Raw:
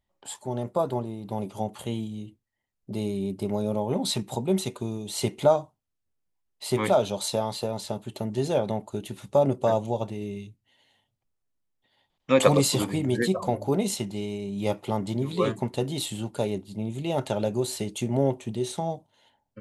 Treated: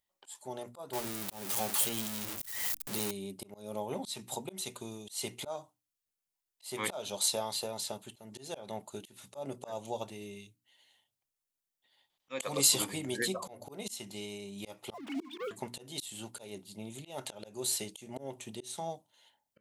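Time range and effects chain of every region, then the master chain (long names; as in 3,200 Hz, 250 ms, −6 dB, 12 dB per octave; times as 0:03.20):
0:00.93–0:03.11: converter with a step at zero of −29 dBFS + high-shelf EQ 8,500 Hz +6.5 dB
0:14.94–0:15.51: three sine waves on the formant tracks + leveller curve on the samples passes 2
whole clip: spectral tilt +3 dB per octave; mains-hum notches 60/120/180/240/300 Hz; volume swells 232 ms; level −6 dB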